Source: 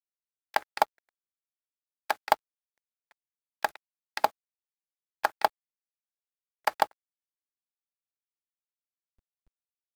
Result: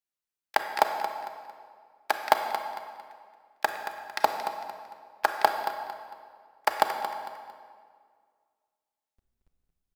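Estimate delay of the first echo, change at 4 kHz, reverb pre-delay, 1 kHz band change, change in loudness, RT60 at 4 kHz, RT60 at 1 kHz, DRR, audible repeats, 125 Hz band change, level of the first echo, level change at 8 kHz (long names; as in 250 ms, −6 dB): 226 ms, +3.0 dB, 29 ms, +3.0 dB, +1.0 dB, 1.5 s, 1.9 s, 4.0 dB, 3, can't be measured, −10.0 dB, +2.5 dB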